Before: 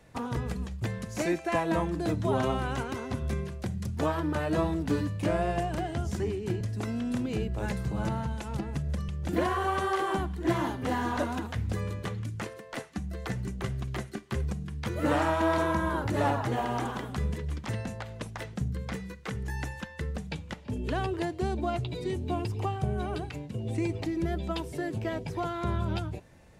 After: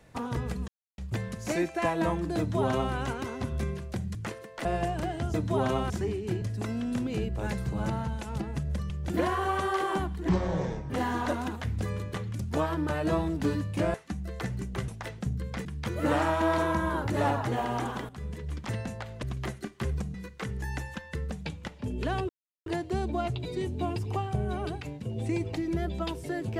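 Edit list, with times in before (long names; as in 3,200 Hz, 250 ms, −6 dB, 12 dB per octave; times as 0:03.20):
0:00.68: splice in silence 0.30 s
0:02.08–0:02.64: duplicate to 0:06.09
0:03.85–0:05.40: swap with 0:12.30–0:12.80
0:10.48–0:10.81: play speed 54%
0:13.74–0:14.65: swap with 0:18.23–0:19.00
0:17.09–0:17.64: fade in, from −13.5 dB
0:21.15: splice in silence 0.37 s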